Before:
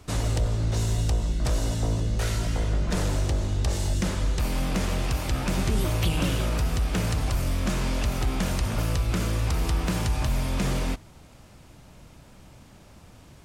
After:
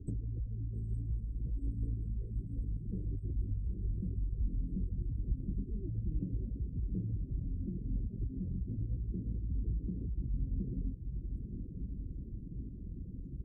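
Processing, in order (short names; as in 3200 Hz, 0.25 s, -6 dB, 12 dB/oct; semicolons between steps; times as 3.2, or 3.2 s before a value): spectral gate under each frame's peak -20 dB strong; 3.36–5.66 tilt -2 dB/oct; inverse Chebyshev band-stop 670–5600 Hz, stop band 40 dB; de-hum 165.7 Hz, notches 2; compressor 4:1, threshold -40 dBFS, peak gain reduction 21.5 dB; diffused feedback echo 0.904 s, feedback 75%, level -7 dB; reverb removal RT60 0.65 s; gain +3.5 dB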